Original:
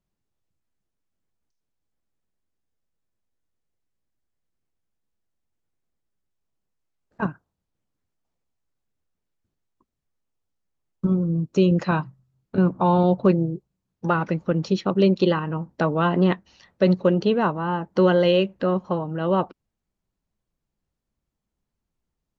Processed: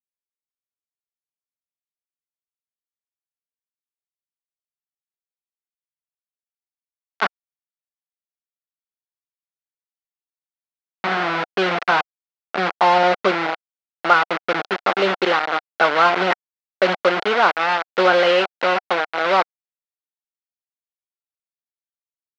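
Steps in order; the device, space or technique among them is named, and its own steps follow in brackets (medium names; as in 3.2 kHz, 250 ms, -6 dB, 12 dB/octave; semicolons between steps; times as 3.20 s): 14.64–15.05 s: bass shelf 84 Hz -5.5 dB; hand-held game console (bit crusher 4-bit; cabinet simulation 500–4100 Hz, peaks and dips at 740 Hz +7 dB, 1.4 kHz +8 dB, 2.1 kHz +4 dB); trim +4 dB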